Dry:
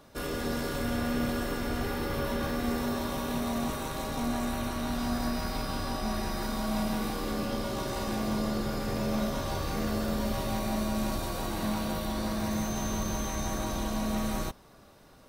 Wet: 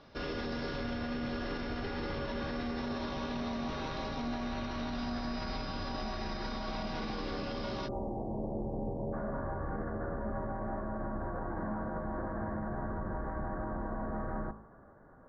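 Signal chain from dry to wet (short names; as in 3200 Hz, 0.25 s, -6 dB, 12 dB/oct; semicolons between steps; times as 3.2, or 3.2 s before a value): elliptic low-pass 5300 Hz, stop band 40 dB, from 7.87 s 880 Hz, from 9.12 s 1700 Hz; de-hum 53.89 Hz, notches 26; limiter -28.5 dBFS, peak gain reduction 8.5 dB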